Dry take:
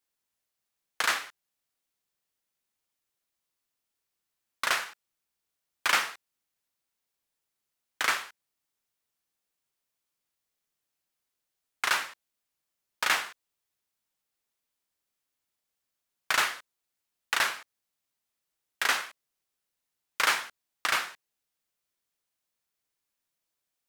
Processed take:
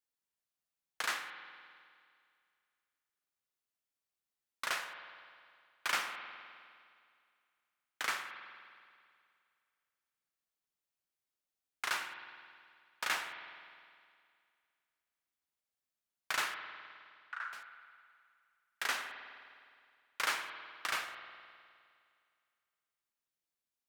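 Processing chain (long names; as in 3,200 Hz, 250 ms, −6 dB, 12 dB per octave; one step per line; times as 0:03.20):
0:16.54–0:17.53: resonant band-pass 1,400 Hz, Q 5.2
spring reverb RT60 2.2 s, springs 51 ms, chirp 45 ms, DRR 7 dB
level −9 dB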